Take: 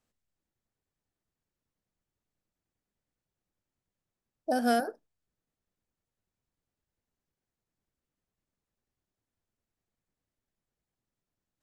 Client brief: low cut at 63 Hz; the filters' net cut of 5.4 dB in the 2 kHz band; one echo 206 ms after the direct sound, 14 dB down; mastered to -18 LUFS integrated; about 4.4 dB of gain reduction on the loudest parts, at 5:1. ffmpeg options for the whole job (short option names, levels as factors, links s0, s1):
-af "highpass=63,equalizer=f=2000:t=o:g=-8.5,acompressor=threshold=0.0447:ratio=5,aecho=1:1:206:0.2,volume=6.31"